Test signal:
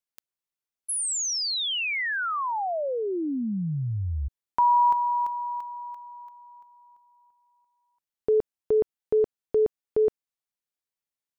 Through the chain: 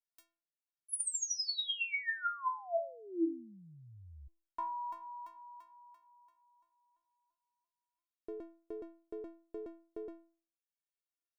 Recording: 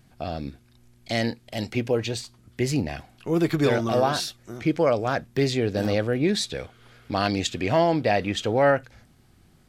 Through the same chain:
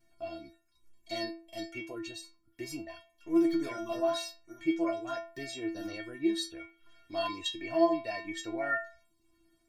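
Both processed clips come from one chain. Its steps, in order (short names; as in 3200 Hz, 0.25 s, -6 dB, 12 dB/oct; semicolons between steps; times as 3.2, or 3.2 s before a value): reverb removal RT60 0.59 s; metallic resonator 330 Hz, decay 0.42 s, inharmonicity 0.008; gain +7 dB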